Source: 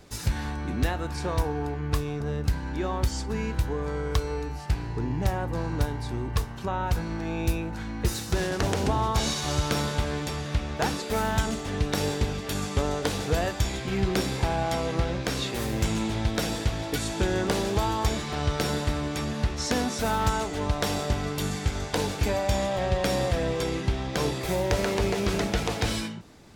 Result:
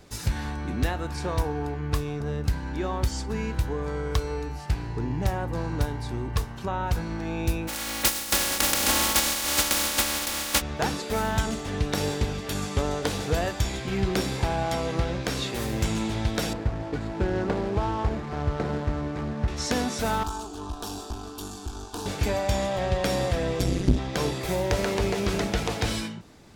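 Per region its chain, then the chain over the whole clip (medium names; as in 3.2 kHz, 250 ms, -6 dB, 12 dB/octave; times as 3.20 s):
7.67–10.60 s: spectral contrast reduction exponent 0.22 + comb 3.6 ms, depth 75%
16.53–19.48 s: median filter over 15 samples + distance through air 74 m
20.23–22.06 s: valve stage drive 23 dB, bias 0.65 + static phaser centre 550 Hz, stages 6
23.59–23.99 s: tone controls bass +14 dB, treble +9 dB + AM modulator 190 Hz, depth 90% + transformer saturation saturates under 160 Hz
whole clip: none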